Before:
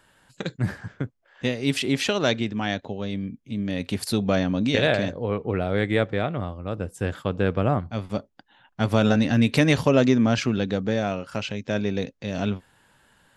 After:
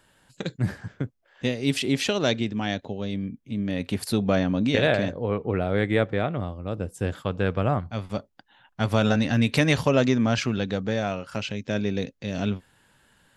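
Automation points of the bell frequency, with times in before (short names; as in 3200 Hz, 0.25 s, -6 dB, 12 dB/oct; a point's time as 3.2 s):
bell -3.5 dB 1.7 oct
1300 Hz
from 3.16 s 5500 Hz
from 6.36 s 1500 Hz
from 7.22 s 300 Hz
from 11.36 s 880 Hz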